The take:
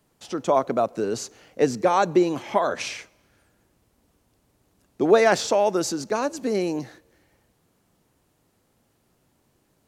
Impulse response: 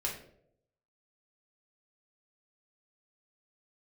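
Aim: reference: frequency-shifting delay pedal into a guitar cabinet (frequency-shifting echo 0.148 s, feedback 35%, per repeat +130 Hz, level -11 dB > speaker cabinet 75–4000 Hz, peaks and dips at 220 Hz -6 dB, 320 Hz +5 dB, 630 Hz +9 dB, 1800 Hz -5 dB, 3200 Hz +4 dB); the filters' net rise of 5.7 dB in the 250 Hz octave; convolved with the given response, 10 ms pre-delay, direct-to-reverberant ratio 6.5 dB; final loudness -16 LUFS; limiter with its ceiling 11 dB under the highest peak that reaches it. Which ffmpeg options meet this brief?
-filter_complex "[0:a]equalizer=f=250:t=o:g=5,alimiter=limit=-14.5dB:level=0:latency=1,asplit=2[a][b];[1:a]atrim=start_sample=2205,adelay=10[c];[b][c]afir=irnorm=-1:irlink=0,volume=-10dB[d];[a][d]amix=inputs=2:normalize=0,asplit=5[e][f][g][h][i];[f]adelay=148,afreqshift=130,volume=-11dB[j];[g]adelay=296,afreqshift=260,volume=-20.1dB[k];[h]adelay=444,afreqshift=390,volume=-29.2dB[l];[i]adelay=592,afreqshift=520,volume=-38.4dB[m];[e][j][k][l][m]amix=inputs=5:normalize=0,highpass=75,equalizer=f=220:t=q:w=4:g=-6,equalizer=f=320:t=q:w=4:g=5,equalizer=f=630:t=q:w=4:g=9,equalizer=f=1.8k:t=q:w=4:g=-5,equalizer=f=3.2k:t=q:w=4:g=4,lowpass=f=4k:w=0.5412,lowpass=f=4k:w=1.3066,volume=5dB"

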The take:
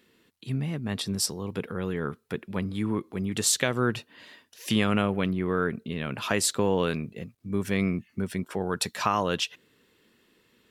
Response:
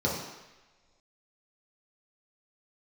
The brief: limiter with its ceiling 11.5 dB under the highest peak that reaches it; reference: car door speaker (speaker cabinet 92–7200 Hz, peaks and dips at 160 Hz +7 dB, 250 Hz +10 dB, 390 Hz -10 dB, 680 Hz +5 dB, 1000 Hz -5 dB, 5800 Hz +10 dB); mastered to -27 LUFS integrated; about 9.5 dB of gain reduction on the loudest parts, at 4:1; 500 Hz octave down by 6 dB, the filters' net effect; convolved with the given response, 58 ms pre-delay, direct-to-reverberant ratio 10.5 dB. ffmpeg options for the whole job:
-filter_complex "[0:a]equalizer=f=500:t=o:g=-4.5,acompressor=threshold=-32dB:ratio=4,alimiter=level_in=5.5dB:limit=-24dB:level=0:latency=1,volume=-5.5dB,asplit=2[a][b];[1:a]atrim=start_sample=2205,adelay=58[c];[b][c]afir=irnorm=-1:irlink=0,volume=-21dB[d];[a][d]amix=inputs=2:normalize=0,highpass=92,equalizer=f=160:t=q:w=4:g=7,equalizer=f=250:t=q:w=4:g=10,equalizer=f=390:t=q:w=4:g=-10,equalizer=f=680:t=q:w=4:g=5,equalizer=f=1k:t=q:w=4:g=-5,equalizer=f=5.8k:t=q:w=4:g=10,lowpass=f=7.2k:w=0.5412,lowpass=f=7.2k:w=1.3066,volume=9dB"

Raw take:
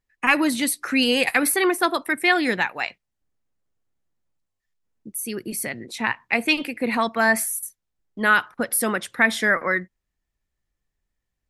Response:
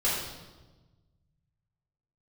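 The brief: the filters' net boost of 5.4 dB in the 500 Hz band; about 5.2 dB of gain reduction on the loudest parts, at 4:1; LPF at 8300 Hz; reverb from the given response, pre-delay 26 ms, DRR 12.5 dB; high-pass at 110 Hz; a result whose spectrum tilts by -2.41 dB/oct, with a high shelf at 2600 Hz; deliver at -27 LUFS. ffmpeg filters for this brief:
-filter_complex "[0:a]highpass=110,lowpass=8.3k,equalizer=f=500:t=o:g=7.5,highshelf=f=2.6k:g=-8,acompressor=threshold=-19dB:ratio=4,asplit=2[a][b];[1:a]atrim=start_sample=2205,adelay=26[c];[b][c]afir=irnorm=-1:irlink=0,volume=-23dB[d];[a][d]amix=inputs=2:normalize=0,volume=-2dB"

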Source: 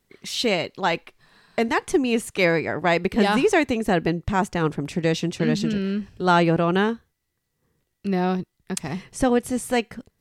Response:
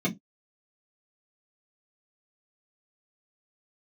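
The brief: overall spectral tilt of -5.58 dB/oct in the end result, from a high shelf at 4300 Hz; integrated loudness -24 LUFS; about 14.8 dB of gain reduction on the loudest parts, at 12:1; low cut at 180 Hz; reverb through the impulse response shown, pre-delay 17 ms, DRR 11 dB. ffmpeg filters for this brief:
-filter_complex "[0:a]highpass=180,highshelf=f=4.3k:g=-4,acompressor=threshold=-29dB:ratio=12,asplit=2[a][b];[1:a]atrim=start_sample=2205,adelay=17[c];[b][c]afir=irnorm=-1:irlink=0,volume=-19.5dB[d];[a][d]amix=inputs=2:normalize=0,volume=8dB"

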